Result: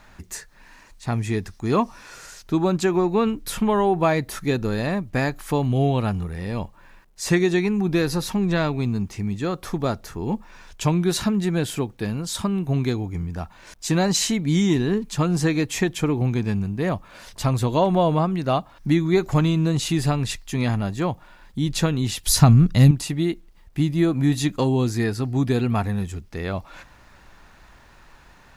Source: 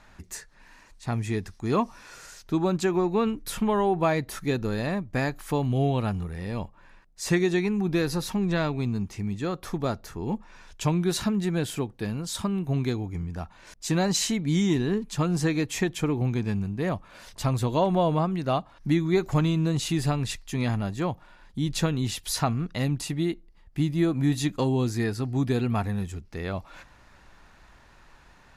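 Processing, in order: 22.26–22.91 tone controls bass +13 dB, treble +7 dB; requantised 12-bit, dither none; gain +4 dB

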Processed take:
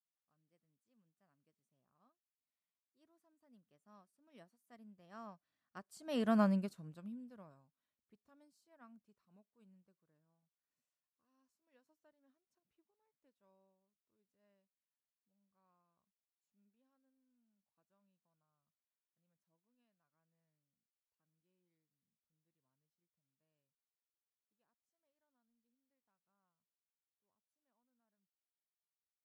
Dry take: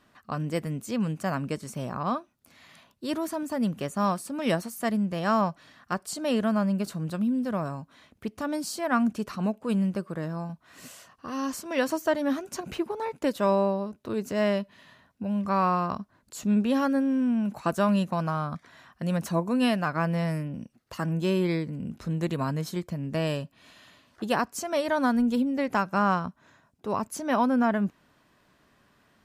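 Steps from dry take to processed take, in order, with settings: Doppler pass-by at 6.41, 9 m/s, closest 1.8 m; upward expander 1.5:1, over -59 dBFS; gain -4.5 dB

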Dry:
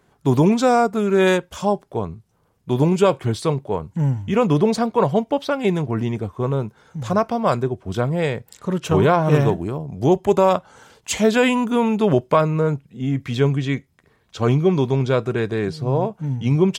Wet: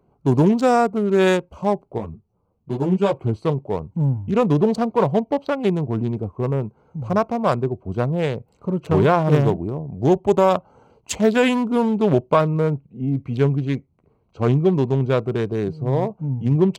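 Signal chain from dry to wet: Wiener smoothing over 25 samples; 1.98–3.14 ensemble effect

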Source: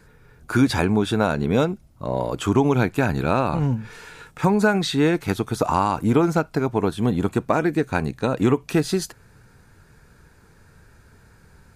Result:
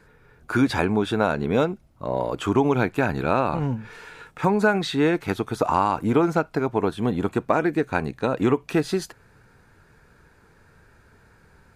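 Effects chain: tone controls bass -5 dB, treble -7 dB

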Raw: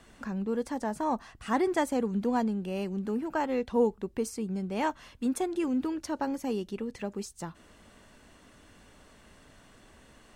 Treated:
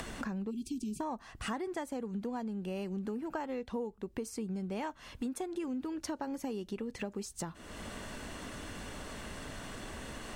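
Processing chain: upward compressor, threshold -36 dBFS; spectral delete 0.51–1, 430–2300 Hz; compressor 12:1, threshold -37 dBFS, peak gain reduction 17.5 dB; gain +3 dB

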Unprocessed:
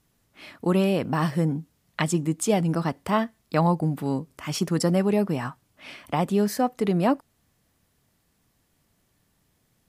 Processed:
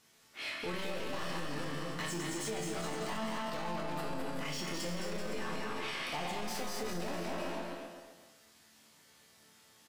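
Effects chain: regenerating reverse delay 0.127 s, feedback 45%, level -11 dB; bell 5600 Hz +4.5 dB 1.6 oct; overdrive pedal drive 29 dB, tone 5600 Hz, clips at -11.5 dBFS; bell 920 Hz -2 dB; resonator bank D2 minor, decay 0.54 s; on a send: bouncing-ball echo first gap 0.21 s, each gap 0.8×, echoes 5; on the sum: limiter -28 dBFS, peak gain reduction 10.5 dB; gain -1 dB

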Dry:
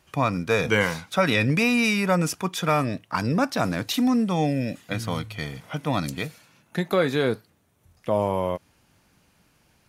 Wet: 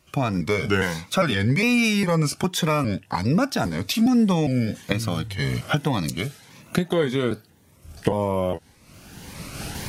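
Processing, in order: trilling pitch shifter -1.5 st, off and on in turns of 0.406 s; recorder AGC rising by 25 dB/s; cascading phaser rising 1.8 Hz; gain +1.5 dB

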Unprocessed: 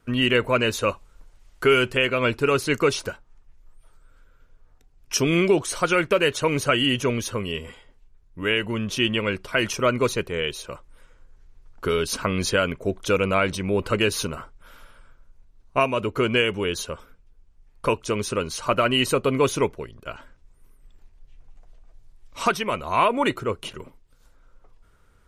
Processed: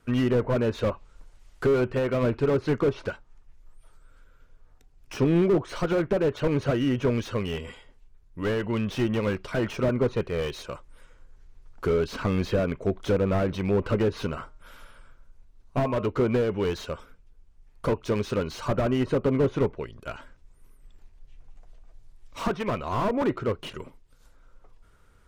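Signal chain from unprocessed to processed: treble ducked by the level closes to 1200 Hz, closed at -17 dBFS; 14.39–16.08 de-hum 153.5 Hz, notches 12; slew limiter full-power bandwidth 49 Hz

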